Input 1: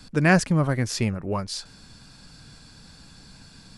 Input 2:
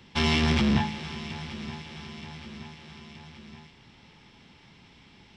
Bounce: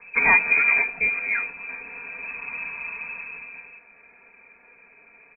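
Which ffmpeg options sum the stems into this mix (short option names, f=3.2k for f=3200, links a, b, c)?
-filter_complex "[0:a]highshelf=f=2.8k:t=q:w=1.5:g=12,dynaudnorm=f=100:g=13:m=15dB,volume=-2dB,asplit=2[a][b];[1:a]volume=0.5dB[c];[b]apad=whole_len=236465[d];[c][d]sidechaincompress=threshold=-22dB:ratio=8:attack=16:release=231[e];[a][e]amix=inputs=2:normalize=0,aecho=1:1:4.2:1,lowpass=f=2.2k:t=q:w=0.5098,lowpass=f=2.2k:t=q:w=0.6013,lowpass=f=2.2k:t=q:w=0.9,lowpass=f=2.2k:t=q:w=2.563,afreqshift=-2600"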